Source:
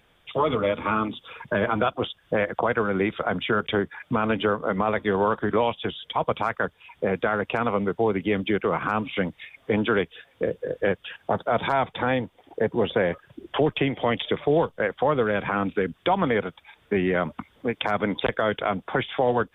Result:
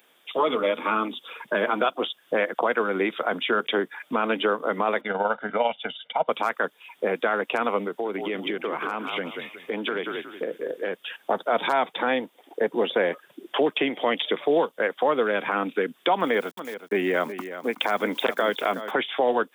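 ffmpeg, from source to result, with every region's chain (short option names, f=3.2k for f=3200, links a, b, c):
-filter_complex "[0:a]asettb=1/sr,asplit=3[a][b][c];[a]atrim=end=5.014[d];[b]atrim=start=5.01:end=6.29,asetpts=PTS-STARTPTS,afade=t=in:d=0.004:c=qsin,afade=t=out:st=1.276:d=0.004:c=qsin,lowpass=f=3.1k:w=0.5412,lowpass=f=3.1k:w=1.3066,aecho=1:1:1.4:0.8,atrim=end_sample=56448,tremolo=f=20:d=0.519[e];[c]atrim=start=6.286[f];[d][e]acrossfade=d=0.004:c1=hsin:c2=qsin[g];[g][f]acrossfade=d=0.004:c1=qsin:c2=hsin,asettb=1/sr,asplit=3[h][i][j];[h]atrim=end=7.864[k];[i]atrim=start=7.86:end=10.93,asetpts=PTS-STARTPTS,afade=t=in:d=0.004:c=qsin,afade=t=out:st=3.066:d=0.004:c=qsin,asplit=5[l][m][n][o][p];[m]adelay=182,afreqshift=-40,volume=-9.5dB[q];[n]adelay=364,afreqshift=-80,volume=-19.4dB[r];[o]adelay=546,afreqshift=-120,volume=-29.3dB[s];[p]adelay=728,afreqshift=-160,volume=-39.2dB[t];[l][q][r][s][t]amix=inputs=5:normalize=0,atrim=end_sample=135387,acompressor=threshold=-24dB:ratio=4:attack=3.2:release=140:knee=1:detection=peak[u];[j]atrim=start=10.926[v];[k][u]acrossfade=d=0.004:c1=hsin:c2=qsin[w];[w][v]acrossfade=d=0.004:c1=qsin:c2=hsin,asettb=1/sr,asplit=3[x][y][z];[x]atrim=end=16.204[aa];[y]atrim=start=16.2:end=18.91,asetpts=PTS-STARTPTS,afade=t=in:d=0.004:c=qsin,afade=t=out:st=2.706:d=0.004:c=qsin,aeval=exprs='val(0)*gte(abs(val(0)),0.00376)':c=same,aecho=1:1:371:0.251,atrim=end_sample=119511[ab];[z]atrim=start=18.906[ac];[aa][ab]acrossfade=d=0.004:c1=hsin:c2=qsin[ad];[ad][ac]acrossfade=d=0.004:c1=qsin:c2=hsin,highpass=f=240:w=0.5412,highpass=f=240:w=1.3066,aemphasis=mode=production:type=50kf"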